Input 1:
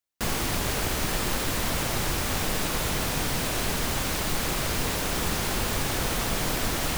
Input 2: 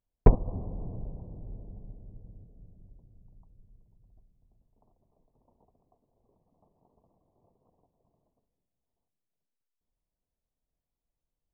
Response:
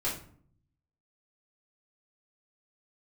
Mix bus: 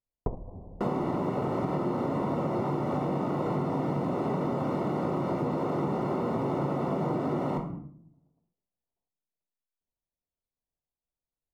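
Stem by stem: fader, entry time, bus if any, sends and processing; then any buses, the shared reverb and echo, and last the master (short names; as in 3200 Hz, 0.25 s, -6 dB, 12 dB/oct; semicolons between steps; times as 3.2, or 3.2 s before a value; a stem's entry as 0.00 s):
+2.0 dB, 0.60 s, send -3 dB, HPF 160 Hz 24 dB/oct
-4.5 dB, 0.00 s, send -21.5 dB, tilt +3 dB/oct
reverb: on, RT60 0.55 s, pre-delay 3 ms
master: polynomial smoothing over 65 samples; tilt -1.5 dB/oct; compressor, threshold -26 dBFS, peak gain reduction 8.5 dB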